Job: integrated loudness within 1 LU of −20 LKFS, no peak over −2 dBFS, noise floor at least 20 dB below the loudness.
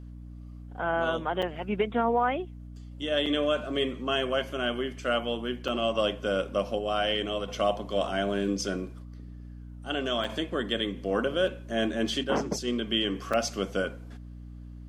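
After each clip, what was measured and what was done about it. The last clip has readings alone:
number of dropouts 5; longest dropout 5.6 ms; mains hum 60 Hz; hum harmonics up to 300 Hz; level of the hum −41 dBFS; integrated loudness −29.0 LKFS; sample peak −13.5 dBFS; target loudness −20.0 LKFS
→ repair the gap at 0:01.42/0:03.26/0:05.68/0:10.24/0:13.33, 5.6 ms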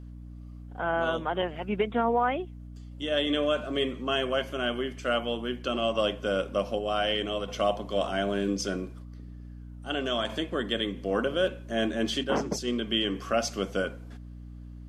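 number of dropouts 0; mains hum 60 Hz; hum harmonics up to 300 Hz; level of the hum −41 dBFS
→ hum removal 60 Hz, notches 5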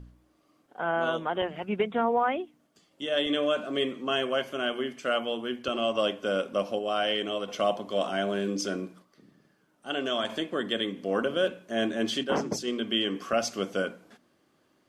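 mains hum none found; integrated loudness −29.0 LKFS; sample peak −14.0 dBFS; target loudness −20.0 LKFS
→ level +9 dB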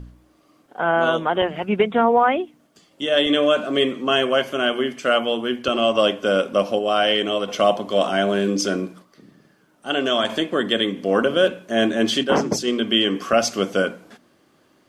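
integrated loudness −20.0 LKFS; sample peak −5.0 dBFS; background noise floor −59 dBFS

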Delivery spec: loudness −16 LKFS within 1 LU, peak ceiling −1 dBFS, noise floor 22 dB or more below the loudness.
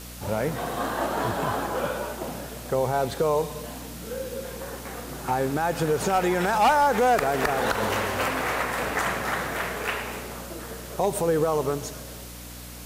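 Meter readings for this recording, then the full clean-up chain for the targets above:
mains hum 60 Hz; hum harmonics up to 300 Hz; level of the hum −41 dBFS; background noise floor −40 dBFS; target noise floor −48 dBFS; integrated loudness −26.0 LKFS; sample peak −13.5 dBFS; target loudness −16.0 LKFS
→ hum removal 60 Hz, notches 5
broadband denoise 8 dB, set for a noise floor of −40 dBFS
level +10 dB

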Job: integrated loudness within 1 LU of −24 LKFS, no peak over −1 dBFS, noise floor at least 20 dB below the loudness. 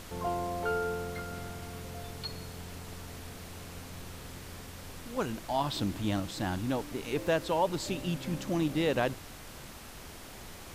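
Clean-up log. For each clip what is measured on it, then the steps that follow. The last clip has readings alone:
background noise floor −47 dBFS; target noise floor −55 dBFS; integrated loudness −34.5 LKFS; sample peak −16.0 dBFS; target loudness −24.0 LKFS
→ noise reduction from a noise print 8 dB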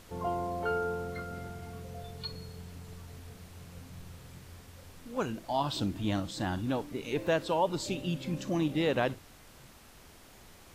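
background noise floor −55 dBFS; integrated loudness −33.5 LKFS; sample peak −16.5 dBFS; target loudness −24.0 LKFS
→ level +9.5 dB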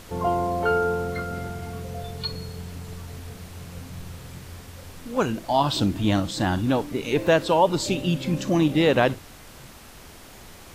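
integrated loudness −24.0 LKFS; sample peak −6.5 dBFS; background noise floor −45 dBFS

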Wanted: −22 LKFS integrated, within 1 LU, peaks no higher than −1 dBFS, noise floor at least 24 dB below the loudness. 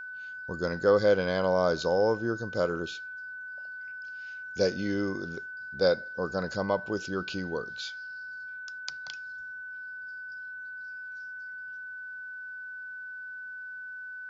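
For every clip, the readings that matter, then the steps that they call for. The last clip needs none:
interfering tone 1,500 Hz; level of the tone −38 dBFS; integrated loudness −32.0 LKFS; sample peak −11.0 dBFS; target loudness −22.0 LKFS
→ notch filter 1,500 Hz, Q 30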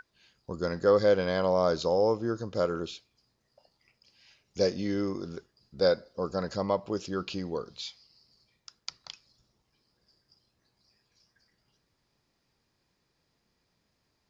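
interfering tone none found; integrated loudness −29.0 LKFS; sample peak −11.5 dBFS; target loudness −22.0 LKFS
→ level +7 dB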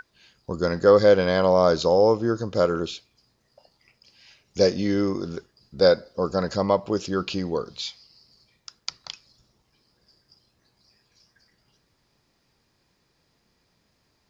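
integrated loudness −22.5 LKFS; sample peak −4.5 dBFS; background noise floor −70 dBFS

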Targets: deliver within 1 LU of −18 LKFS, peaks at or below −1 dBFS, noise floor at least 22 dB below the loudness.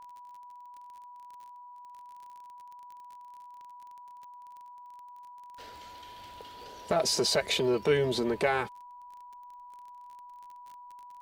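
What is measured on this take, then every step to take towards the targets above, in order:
crackle rate 34 per second; interfering tone 980 Hz; level of the tone −46 dBFS; integrated loudness −27.5 LKFS; sample peak −13.0 dBFS; target loudness −18.0 LKFS
→ click removal
notch filter 980 Hz, Q 30
level +9.5 dB

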